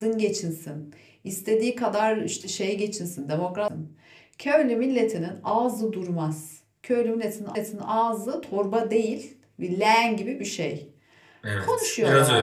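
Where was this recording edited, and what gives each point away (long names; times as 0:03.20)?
0:03.68: cut off before it has died away
0:07.55: the same again, the last 0.33 s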